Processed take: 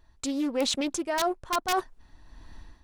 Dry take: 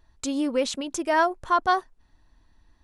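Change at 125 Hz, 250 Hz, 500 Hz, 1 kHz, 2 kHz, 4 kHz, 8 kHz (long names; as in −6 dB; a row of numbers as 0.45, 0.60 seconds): can't be measured, −1.5 dB, −4.0 dB, −6.5 dB, −6.5 dB, +2.5 dB, +1.5 dB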